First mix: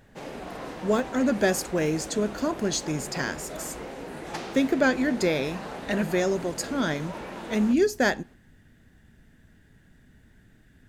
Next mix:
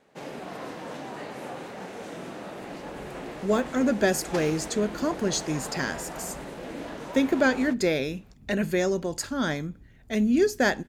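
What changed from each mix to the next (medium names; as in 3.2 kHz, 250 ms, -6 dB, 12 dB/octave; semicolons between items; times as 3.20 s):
speech: entry +2.60 s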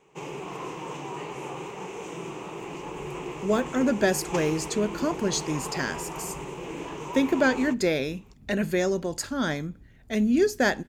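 background: add rippled EQ curve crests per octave 0.72, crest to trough 13 dB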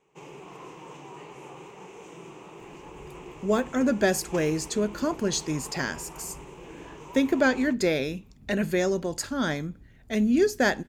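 background -8.0 dB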